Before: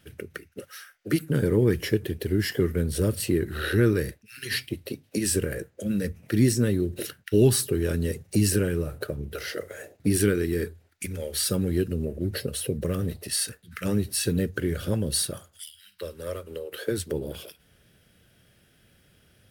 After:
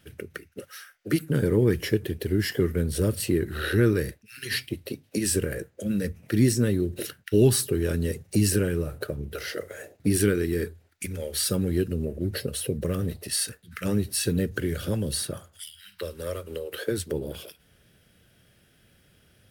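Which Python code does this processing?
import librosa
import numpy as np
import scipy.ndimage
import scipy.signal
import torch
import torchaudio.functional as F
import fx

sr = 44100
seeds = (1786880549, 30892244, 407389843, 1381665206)

y = fx.band_squash(x, sr, depth_pct=40, at=(14.51, 16.84))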